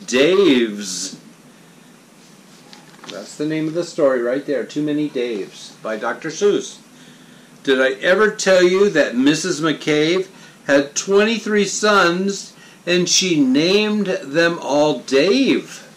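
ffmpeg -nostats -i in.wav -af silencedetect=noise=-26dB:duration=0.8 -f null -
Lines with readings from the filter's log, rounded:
silence_start: 1.14
silence_end: 2.73 | silence_duration: 1.59
silence_start: 6.72
silence_end: 7.65 | silence_duration: 0.93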